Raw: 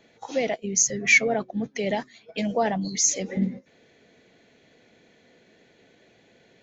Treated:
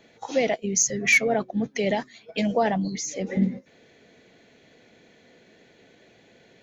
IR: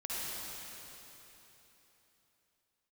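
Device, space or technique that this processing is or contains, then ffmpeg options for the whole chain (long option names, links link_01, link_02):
clipper into limiter: -filter_complex "[0:a]asoftclip=type=hard:threshold=-10.5dB,alimiter=limit=-14dB:level=0:latency=1:release=221,asettb=1/sr,asplit=3[link_01][link_02][link_03];[link_01]atrim=end=2.824[link_04];[link_02]atrim=start=2.82:end=3.27,asetpts=PTS-STARTPTS,afade=type=in:duration=0.004:curve=qsin,afade=type=out:start_time=0.446:duration=0.004:curve=qsin,lowpass=frequency=1800:poles=1[link_05];[link_03]atrim=start=3.266[link_06];[link_04][link_05]acrossfade=duration=0.004:curve1=hsin:curve2=qsin[link_07];[link_07][link_06]acrossfade=duration=0.004:curve1=qsin:curve2=hsin,volume=2.5dB"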